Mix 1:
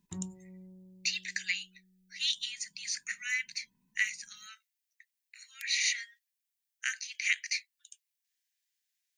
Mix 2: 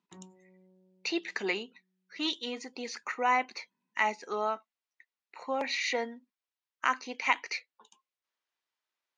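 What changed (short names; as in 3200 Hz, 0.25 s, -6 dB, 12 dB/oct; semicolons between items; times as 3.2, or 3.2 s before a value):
speech: remove steep high-pass 1600 Hz 72 dB/oct; master: add BPF 370–3700 Hz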